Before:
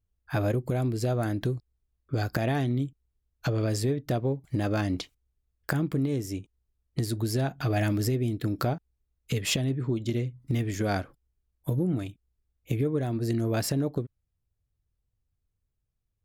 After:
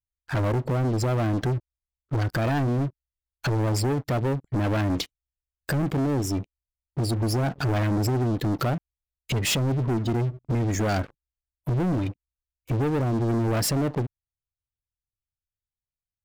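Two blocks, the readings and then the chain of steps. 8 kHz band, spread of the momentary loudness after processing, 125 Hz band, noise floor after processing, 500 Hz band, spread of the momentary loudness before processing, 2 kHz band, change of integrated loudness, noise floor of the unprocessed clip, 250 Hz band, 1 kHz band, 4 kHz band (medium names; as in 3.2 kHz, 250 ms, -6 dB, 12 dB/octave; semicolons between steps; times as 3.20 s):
+4.0 dB, 8 LU, +3.5 dB, under -85 dBFS, +2.5 dB, 8 LU, +3.0 dB, +3.5 dB, -80 dBFS, +3.0 dB, +5.5 dB, +3.5 dB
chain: spectral gate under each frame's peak -25 dB strong; peaking EQ 1.1 kHz -3 dB 0.99 oct; waveshaping leveller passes 5; trim -7.5 dB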